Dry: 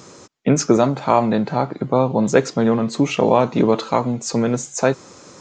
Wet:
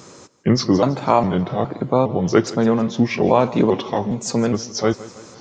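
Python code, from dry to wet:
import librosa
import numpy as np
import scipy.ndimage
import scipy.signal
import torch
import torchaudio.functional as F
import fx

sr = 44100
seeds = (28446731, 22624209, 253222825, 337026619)

y = fx.pitch_trill(x, sr, semitones=-3.0, every_ms=411)
y = fx.echo_feedback(y, sr, ms=162, feedback_pct=54, wet_db=-18.5)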